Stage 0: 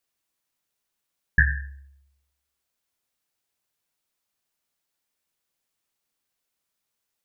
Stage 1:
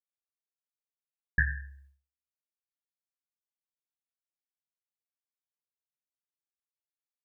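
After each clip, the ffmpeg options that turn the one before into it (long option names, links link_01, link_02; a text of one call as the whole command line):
ffmpeg -i in.wav -af "agate=range=-33dB:threshold=-48dB:ratio=3:detection=peak,volume=-7.5dB" out.wav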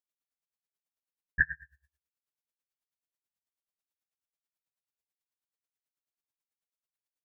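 ffmpeg -i in.wav -filter_complex "[0:a]asplit=2[link_01][link_02];[link_02]adelay=22,volume=-3dB[link_03];[link_01][link_03]amix=inputs=2:normalize=0,aeval=exprs='val(0)*pow(10,-26*(0.5-0.5*cos(2*PI*9.2*n/s))/20)':channel_layout=same,volume=2dB" out.wav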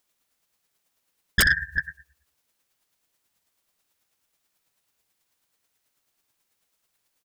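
ffmpeg -i in.wav -af "aecho=1:1:64|374:0.251|0.112,aeval=exprs='0.316*sin(PI/2*8.91*val(0)/0.316)':channel_layout=same,volume=-3.5dB" out.wav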